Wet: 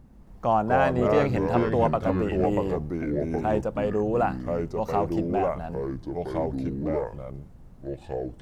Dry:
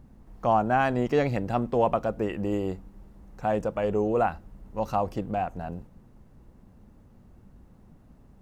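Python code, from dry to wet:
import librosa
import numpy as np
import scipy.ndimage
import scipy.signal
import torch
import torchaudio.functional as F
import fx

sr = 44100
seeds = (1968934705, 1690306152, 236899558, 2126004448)

y = fx.echo_pitch(x, sr, ms=135, semitones=-4, count=2, db_per_echo=-3.0)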